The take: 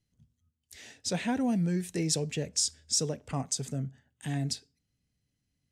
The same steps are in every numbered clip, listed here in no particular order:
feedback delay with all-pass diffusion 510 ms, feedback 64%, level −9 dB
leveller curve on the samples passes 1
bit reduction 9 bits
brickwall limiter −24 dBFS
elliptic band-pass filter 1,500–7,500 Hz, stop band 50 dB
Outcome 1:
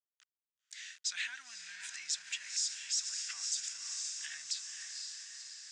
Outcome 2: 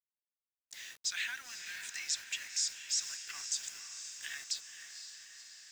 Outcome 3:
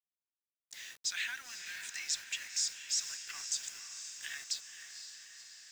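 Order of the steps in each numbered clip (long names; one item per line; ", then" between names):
bit reduction, then feedback delay with all-pass diffusion, then leveller curve on the samples, then brickwall limiter, then elliptic band-pass filter
leveller curve on the samples, then elliptic band-pass filter, then bit reduction, then brickwall limiter, then feedback delay with all-pass diffusion
leveller curve on the samples, then elliptic band-pass filter, then brickwall limiter, then bit reduction, then feedback delay with all-pass diffusion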